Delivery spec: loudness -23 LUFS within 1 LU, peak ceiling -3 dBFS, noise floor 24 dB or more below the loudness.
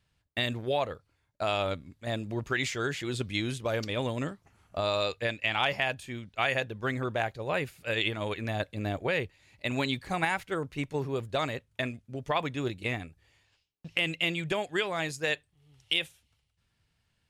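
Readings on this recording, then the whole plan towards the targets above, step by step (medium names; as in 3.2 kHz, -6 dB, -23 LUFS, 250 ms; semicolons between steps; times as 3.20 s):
loudness -31.5 LUFS; peak level -13.0 dBFS; loudness target -23.0 LUFS
-> trim +8.5 dB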